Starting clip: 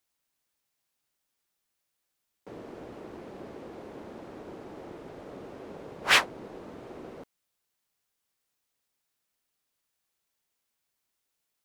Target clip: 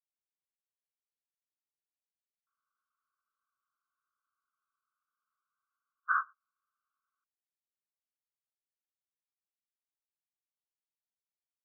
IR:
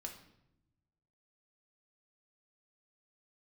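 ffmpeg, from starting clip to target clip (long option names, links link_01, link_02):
-af "agate=range=-31dB:threshold=-33dB:ratio=16:detection=peak,asuperpass=centerf=1300:order=12:qfactor=2.7"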